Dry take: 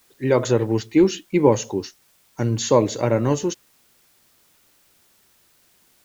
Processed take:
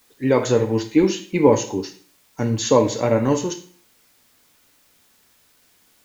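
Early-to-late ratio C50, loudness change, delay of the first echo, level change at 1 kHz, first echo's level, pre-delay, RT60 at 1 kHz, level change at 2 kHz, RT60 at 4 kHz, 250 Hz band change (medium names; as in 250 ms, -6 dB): 11.0 dB, +1.0 dB, no echo, +1.5 dB, no echo, 3 ms, 0.50 s, +1.5 dB, 0.40 s, +1.0 dB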